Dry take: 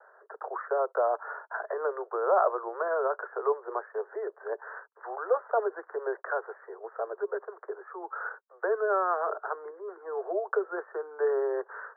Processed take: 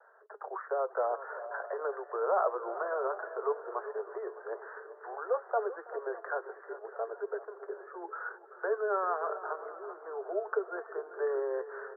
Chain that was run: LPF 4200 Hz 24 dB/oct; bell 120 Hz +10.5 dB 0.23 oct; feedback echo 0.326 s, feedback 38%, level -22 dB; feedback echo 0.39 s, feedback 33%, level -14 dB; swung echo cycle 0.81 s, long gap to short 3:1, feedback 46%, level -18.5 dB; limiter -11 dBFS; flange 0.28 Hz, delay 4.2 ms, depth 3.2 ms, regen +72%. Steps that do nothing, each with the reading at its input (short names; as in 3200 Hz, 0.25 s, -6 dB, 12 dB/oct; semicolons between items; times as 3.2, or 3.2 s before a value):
LPF 4200 Hz: input band ends at 1800 Hz; bell 120 Hz: input band starts at 320 Hz; limiter -11 dBFS: input peak -13.5 dBFS